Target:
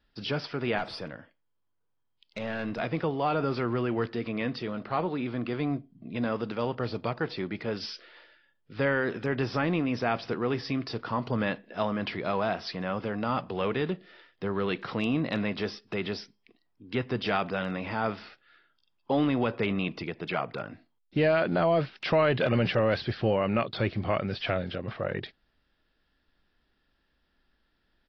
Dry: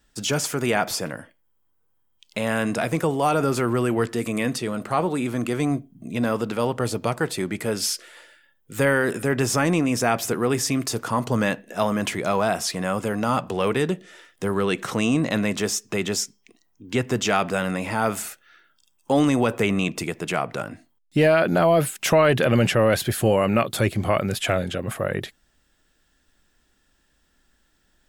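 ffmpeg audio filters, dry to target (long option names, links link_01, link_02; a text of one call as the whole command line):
ffmpeg -i in.wav -filter_complex "[0:a]aresample=11025,aresample=44100,asettb=1/sr,asplit=3[link_01][link_02][link_03];[link_01]atrim=end=0.784[link_04];[link_02]atrim=start=0.78:end=2.8,asetpts=PTS-STARTPTS,afade=type=in:duration=0.004:curve=qsin,afade=type=out:start_time=2.016:duration=0.004:curve=qsin,aeval=exprs='(tanh(5.01*val(0)+0.45)-tanh(0.45))/5.01':channel_layout=same[link_05];[link_03]atrim=start=2.796[link_06];[link_04][link_05]acrossfade=duration=0.004:curve1=hsin:curve2=qsin[link_07];[link_07][link_06]acrossfade=duration=0.004:curve1=qsin:curve2=hsin,volume=-6.5dB" -ar 24000 -c:a aac -b:a 32k out.aac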